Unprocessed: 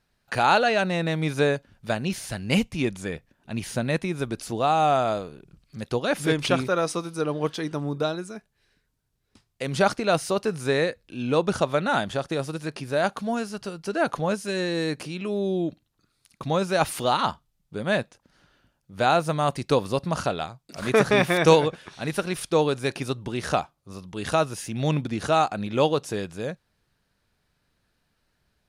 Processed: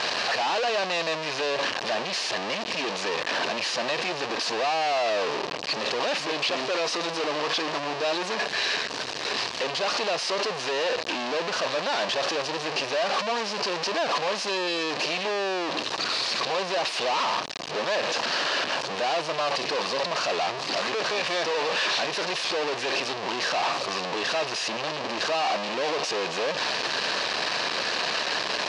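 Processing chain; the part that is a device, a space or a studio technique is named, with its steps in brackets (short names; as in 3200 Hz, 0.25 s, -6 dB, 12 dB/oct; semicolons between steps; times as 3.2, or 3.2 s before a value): home computer beeper (infinite clipping; speaker cabinet 670–4600 Hz, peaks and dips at 830 Hz -4 dB, 1400 Hz -10 dB, 2100 Hz -7 dB, 3400 Hz -6 dB); gain +7.5 dB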